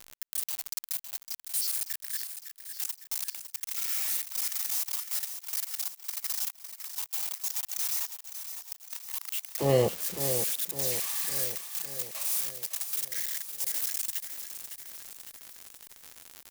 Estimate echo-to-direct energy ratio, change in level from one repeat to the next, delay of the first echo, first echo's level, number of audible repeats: −8.0 dB, −5.0 dB, 557 ms, −9.5 dB, 6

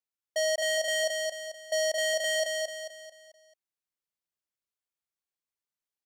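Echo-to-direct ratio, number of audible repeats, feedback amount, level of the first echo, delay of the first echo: −2.5 dB, 5, 42%, −3.5 dB, 220 ms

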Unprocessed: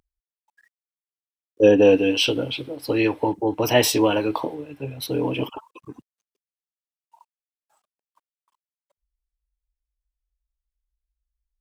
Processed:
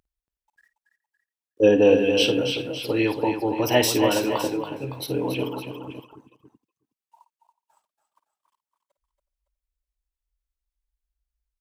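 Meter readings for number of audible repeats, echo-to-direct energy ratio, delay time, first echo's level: 5, −5.5 dB, 53 ms, −12.5 dB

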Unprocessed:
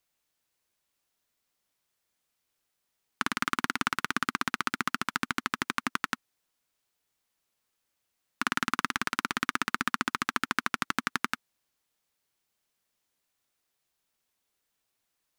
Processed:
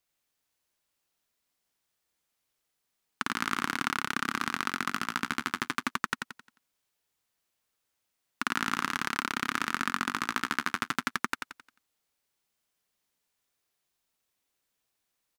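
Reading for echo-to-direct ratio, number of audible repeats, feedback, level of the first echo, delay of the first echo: −4.0 dB, 4, 39%, −4.5 dB, 88 ms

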